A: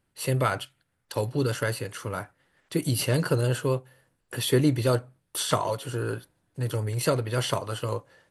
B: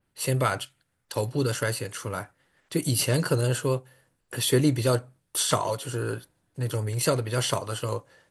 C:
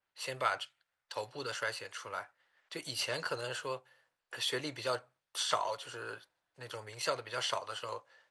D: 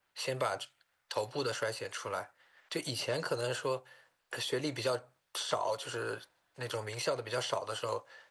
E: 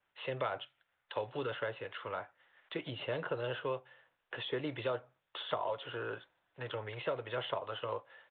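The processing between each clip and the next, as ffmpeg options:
-af "adynamicequalizer=threshold=0.00398:dfrequency=7500:dqfactor=0.84:tfrequency=7500:tqfactor=0.84:attack=5:release=100:ratio=0.375:range=3:mode=boostabove:tftype=bell"
-filter_complex "[0:a]acrossover=split=560 6300:gain=0.0891 1 0.112[s0][s1][s2];[s0][s1][s2]amix=inputs=3:normalize=0,volume=0.596"
-filter_complex "[0:a]acrossover=split=740|5400[s0][s1][s2];[s0]acompressor=threshold=0.0112:ratio=4[s3];[s1]acompressor=threshold=0.00355:ratio=4[s4];[s2]acompressor=threshold=0.00178:ratio=4[s5];[s3][s4][s5]amix=inputs=3:normalize=0,volume=2.66"
-af "aresample=8000,aresample=44100,volume=0.75"

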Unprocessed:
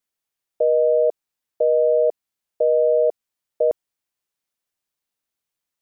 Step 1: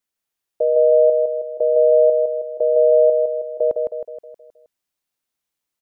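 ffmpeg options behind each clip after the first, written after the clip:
-af "aecho=1:1:158|316|474|632|790|948:0.631|0.315|0.158|0.0789|0.0394|0.0197"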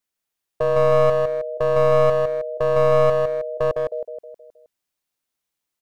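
-af "aeval=exprs='clip(val(0),-1,0.0891)':c=same"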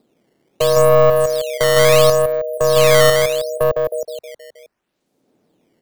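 -filter_complex "[0:a]acrossover=split=140|550[s0][s1][s2];[s1]acompressor=mode=upward:threshold=0.00891:ratio=2.5[s3];[s0][s3][s2]amix=inputs=3:normalize=0,acrusher=samples=10:mix=1:aa=0.000001:lfo=1:lforange=16:lforate=0.73,volume=1.78"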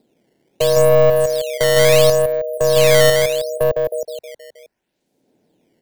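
-af "equalizer=f=1200:t=o:w=0.26:g=-14"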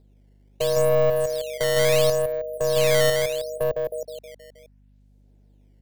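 -af "aeval=exprs='val(0)+0.00447*(sin(2*PI*50*n/s)+sin(2*PI*2*50*n/s)/2+sin(2*PI*3*50*n/s)/3+sin(2*PI*4*50*n/s)/4+sin(2*PI*5*50*n/s)/5)':c=same,volume=0.422"

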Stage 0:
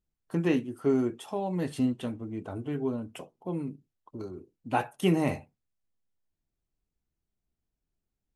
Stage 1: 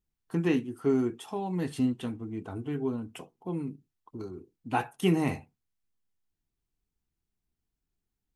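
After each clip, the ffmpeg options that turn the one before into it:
-af "equalizer=f=580:w=6.6:g=-12.5"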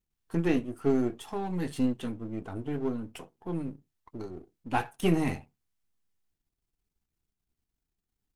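-af "aeval=exprs='if(lt(val(0),0),0.447*val(0),val(0))':c=same,volume=1.33"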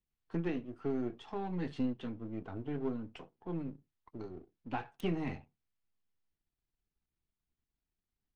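-filter_complex "[0:a]alimiter=limit=0.112:level=0:latency=1:release=387,acrossover=split=170|5200[s0][s1][s2];[s2]acrusher=bits=5:mix=0:aa=0.000001[s3];[s0][s1][s3]amix=inputs=3:normalize=0,volume=0.562"

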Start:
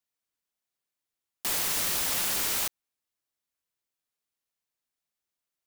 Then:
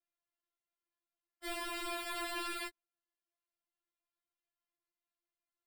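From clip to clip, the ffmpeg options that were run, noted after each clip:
-af "aemphasis=mode=reproduction:type=75kf,acrusher=samples=7:mix=1:aa=0.000001,afftfilt=real='re*4*eq(mod(b,16),0)':imag='im*4*eq(mod(b,16),0)':win_size=2048:overlap=0.75,volume=0.891"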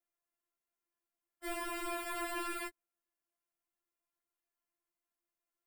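-af "equalizer=f=125:t=o:w=1:g=-9,equalizer=f=250:t=o:w=1:g=3,equalizer=f=4000:t=o:w=1:g=-10,volume=1.26"

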